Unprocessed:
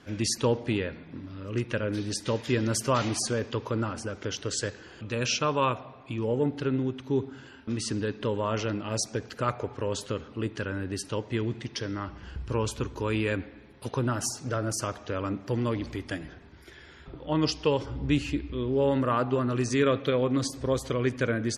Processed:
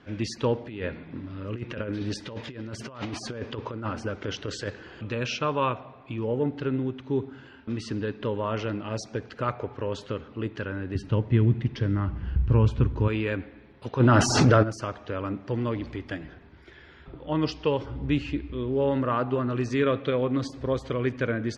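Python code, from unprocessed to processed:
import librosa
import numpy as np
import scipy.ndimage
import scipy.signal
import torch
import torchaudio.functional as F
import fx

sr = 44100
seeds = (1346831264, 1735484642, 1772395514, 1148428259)

y = fx.over_compress(x, sr, threshold_db=-31.0, ratio=-0.5, at=(0.68, 5.14))
y = fx.bass_treble(y, sr, bass_db=13, treble_db=-6, at=(10.95, 13.08))
y = fx.env_flatten(y, sr, amount_pct=100, at=(13.99, 14.62), fade=0.02)
y = scipy.signal.sosfilt(scipy.signal.butter(2, 3500.0, 'lowpass', fs=sr, output='sos'), y)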